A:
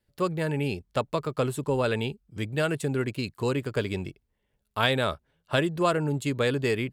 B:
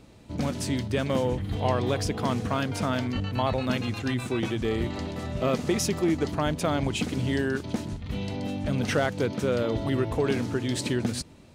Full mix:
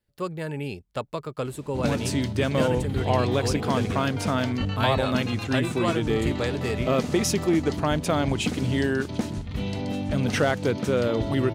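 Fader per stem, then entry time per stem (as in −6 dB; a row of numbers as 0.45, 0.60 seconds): −3.5, +2.5 decibels; 0.00, 1.45 seconds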